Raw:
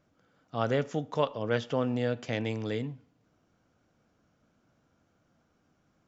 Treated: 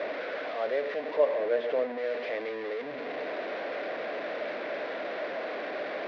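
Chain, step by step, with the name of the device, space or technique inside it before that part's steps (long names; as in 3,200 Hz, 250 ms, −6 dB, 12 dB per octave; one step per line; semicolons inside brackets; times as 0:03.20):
digital answering machine (band-pass filter 330–3,000 Hz; linear delta modulator 32 kbit/s, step −25.5 dBFS; loudspeaker in its box 410–3,300 Hz, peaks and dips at 420 Hz +4 dB, 600 Hz +9 dB, 880 Hz −6 dB, 1,300 Hz −8 dB, 1,900 Hz +4 dB, 3,000 Hz −7 dB)
0:01.16–0:01.98: tilt shelving filter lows +4.5 dB, about 1,300 Hz
level −3 dB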